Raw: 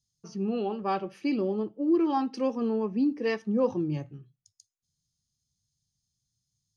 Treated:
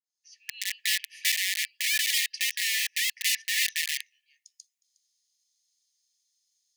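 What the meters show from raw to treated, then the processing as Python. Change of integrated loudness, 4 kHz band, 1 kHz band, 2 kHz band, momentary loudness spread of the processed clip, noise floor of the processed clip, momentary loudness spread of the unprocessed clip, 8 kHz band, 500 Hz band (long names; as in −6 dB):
+2.5 dB, +21.5 dB, below −40 dB, +15.5 dB, 9 LU, −85 dBFS, 7 LU, can't be measured, below −40 dB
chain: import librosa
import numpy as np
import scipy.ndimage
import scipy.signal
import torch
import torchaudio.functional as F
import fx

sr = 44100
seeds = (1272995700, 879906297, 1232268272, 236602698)

p1 = fx.fade_in_head(x, sr, length_s=0.77)
p2 = p1 + fx.echo_single(p1, sr, ms=361, db=-20.5, dry=0)
p3 = (np.mod(10.0 ** (25.0 / 20.0) * p2 + 1.0, 2.0) - 1.0) / 10.0 ** (25.0 / 20.0)
p4 = fx.brickwall_highpass(p3, sr, low_hz=1700.0)
y = p4 * librosa.db_to_amplitude(7.5)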